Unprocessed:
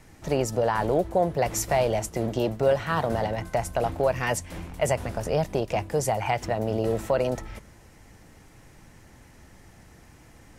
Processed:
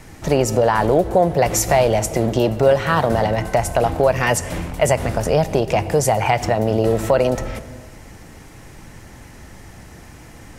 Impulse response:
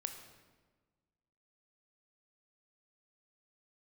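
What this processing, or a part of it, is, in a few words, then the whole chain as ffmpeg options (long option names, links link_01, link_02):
ducked reverb: -filter_complex "[0:a]asplit=3[link_01][link_02][link_03];[1:a]atrim=start_sample=2205[link_04];[link_02][link_04]afir=irnorm=-1:irlink=0[link_05];[link_03]apad=whole_len=466817[link_06];[link_05][link_06]sidechaincompress=threshold=-29dB:ratio=8:attack=16:release=144,volume=-0.5dB[link_07];[link_01][link_07]amix=inputs=2:normalize=0,volume=6dB"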